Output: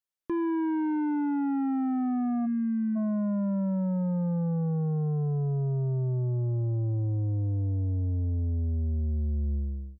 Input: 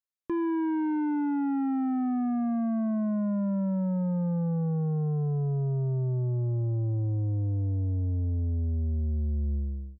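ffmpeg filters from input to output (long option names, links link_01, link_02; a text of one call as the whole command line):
ffmpeg -i in.wav -filter_complex "[0:a]asplit=3[link_01][link_02][link_03];[link_01]afade=type=out:start_time=2.45:duration=0.02[link_04];[link_02]asuperstop=centerf=810:order=8:qfactor=0.91,afade=type=in:start_time=2.45:duration=0.02,afade=type=out:start_time=2.95:duration=0.02[link_05];[link_03]afade=type=in:start_time=2.95:duration=0.02[link_06];[link_04][link_05][link_06]amix=inputs=3:normalize=0" out.wav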